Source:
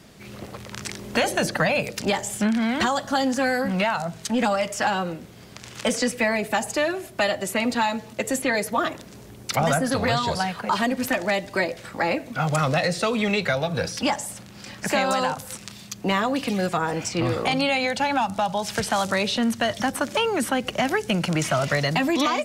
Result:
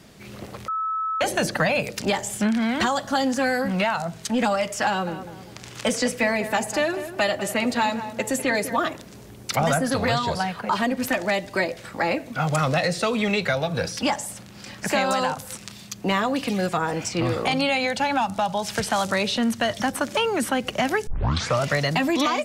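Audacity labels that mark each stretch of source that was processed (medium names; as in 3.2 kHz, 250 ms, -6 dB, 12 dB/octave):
0.680000	1.210000	bleep 1.3 kHz -23 dBFS
4.870000	8.760000	filtered feedback delay 200 ms, feedback 40%, low-pass 1.9 kHz, level -10.5 dB
10.180000	11.020000	peaking EQ 8.2 kHz -3.5 dB 2.3 oct
21.070000	21.070000	tape start 0.53 s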